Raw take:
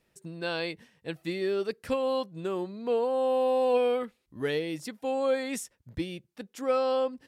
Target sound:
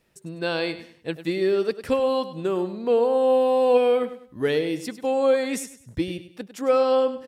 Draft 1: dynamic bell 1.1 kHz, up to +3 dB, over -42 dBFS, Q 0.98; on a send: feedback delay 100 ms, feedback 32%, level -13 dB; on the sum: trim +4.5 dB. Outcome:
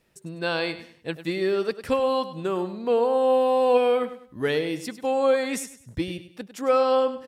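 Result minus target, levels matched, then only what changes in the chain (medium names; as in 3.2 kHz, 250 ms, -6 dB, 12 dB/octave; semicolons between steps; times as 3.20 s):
1 kHz band +2.5 dB
change: dynamic bell 380 Hz, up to +3 dB, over -42 dBFS, Q 0.98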